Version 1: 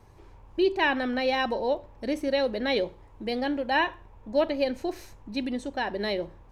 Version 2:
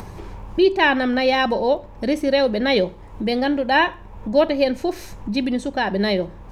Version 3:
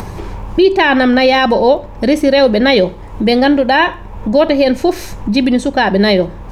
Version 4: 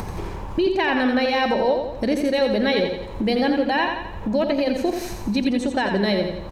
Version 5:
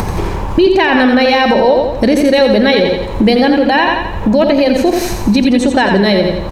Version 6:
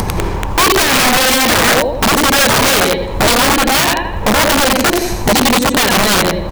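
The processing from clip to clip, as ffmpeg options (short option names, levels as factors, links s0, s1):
-filter_complex "[0:a]equalizer=f=190:t=o:w=0.22:g=11.5,asplit=2[s0][s1];[s1]acompressor=mode=upward:threshold=0.0447:ratio=2.5,volume=1.41[s2];[s0][s2]amix=inputs=2:normalize=0"
-af "alimiter=level_in=3.55:limit=0.891:release=50:level=0:latency=1,volume=0.891"
-filter_complex "[0:a]acompressor=threshold=0.126:ratio=2,asplit=2[s0][s1];[s1]aecho=0:1:86|172|258|344|430|516:0.501|0.251|0.125|0.0626|0.0313|0.0157[s2];[s0][s2]amix=inputs=2:normalize=0,volume=0.562"
-af "alimiter=level_in=5.01:limit=0.891:release=50:level=0:latency=1,volume=0.891"
-af "aeval=exprs='(mod(2*val(0)+1,2)-1)/2':c=same,acrusher=bits=9:mode=log:mix=0:aa=0.000001"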